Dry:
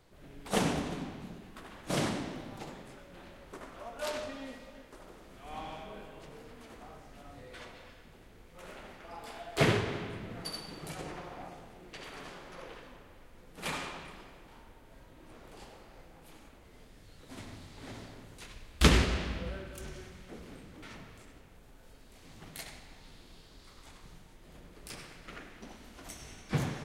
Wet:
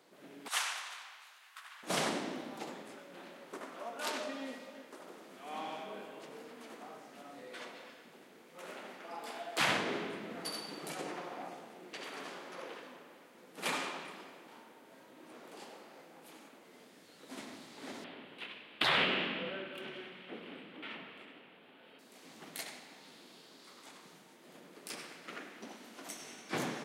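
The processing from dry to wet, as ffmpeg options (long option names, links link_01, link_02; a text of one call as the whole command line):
ffmpeg -i in.wav -filter_complex "[0:a]asettb=1/sr,asplit=3[link_01][link_02][link_03];[link_01]atrim=end=0.484[link_04];[link_02]atrim=start=0.48:end=1.83,asetpts=PTS-STARTPTS,afade=type=in:duration=0.004:curve=qsin,afade=type=out:start_time=1.346:duration=0.004:curve=qsin,highpass=frequency=1100:width=0.5412,highpass=frequency=1100:width=1.3066[link_05];[link_03]atrim=start=1.826[link_06];[link_04][link_05]acrossfade=duration=0.004:curve1=hsin:curve2=qsin[link_07];[link_07][link_06]acrossfade=duration=0.004:curve1=qsin:curve2=hsin,asettb=1/sr,asplit=3[link_08][link_09][link_10];[link_08]atrim=end=18.044[link_11];[link_09]atrim=start=18.04:end=21.99,asetpts=PTS-STARTPTS,afade=type=in:duration=0.004:curve=qsin,afade=type=out:start_time=3.946:duration=0.004:curve=qsin,highshelf=frequency=4400:width_type=q:width=3:gain=-13.5[link_12];[link_10]atrim=start=21.986[link_13];[link_11][link_12]acrossfade=duration=0.004:curve1=hsin:curve2=qsin[link_14];[link_14][link_13]acrossfade=duration=0.004:curve1=qsin:curve2=hsin,highpass=frequency=210:width=0.5412,highpass=frequency=210:width=1.3066,afftfilt=real='re*lt(hypot(re,im),0.126)':imag='im*lt(hypot(re,im),0.126)':win_size=1024:overlap=0.75,volume=1.5dB" out.wav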